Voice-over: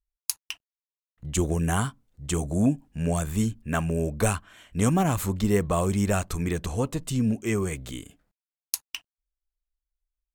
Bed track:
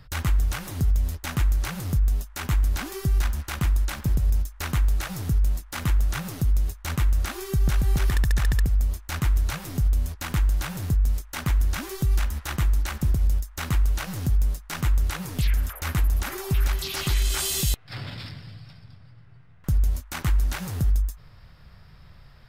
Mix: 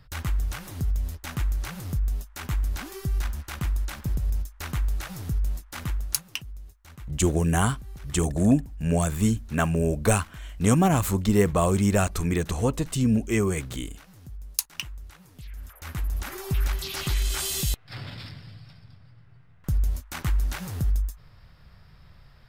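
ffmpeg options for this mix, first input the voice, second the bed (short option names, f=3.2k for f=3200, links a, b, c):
-filter_complex "[0:a]adelay=5850,volume=2.5dB[a];[1:a]volume=12dB,afade=t=out:st=5.78:d=0.47:silence=0.188365,afade=t=in:st=15.5:d=1.01:silence=0.149624[b];[a][b]amix=inputs=2:normalize=0"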